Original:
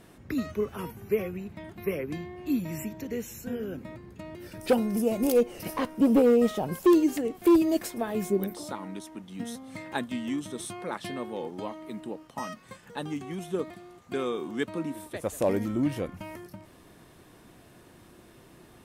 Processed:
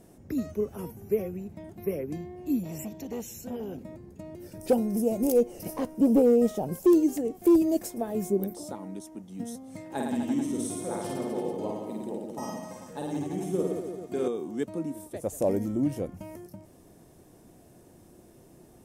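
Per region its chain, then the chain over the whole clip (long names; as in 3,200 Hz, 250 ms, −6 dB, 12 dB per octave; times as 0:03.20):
0:02.63–0:03.83: parametric band 3,400 Hz +10 dB 1.2 octaves + saturating transformer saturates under 640 Hz
0:09.85–0:14.28: high-pass filter 56 Hz + reverse bouncing-ball delay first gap 50 ms, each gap 1.15×, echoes 6, each echo −2 dB
whole clip: flat-topped bell 2,100 Hz −10.5 dB 2.4 octaves; mains-hum notches 60/120 Hz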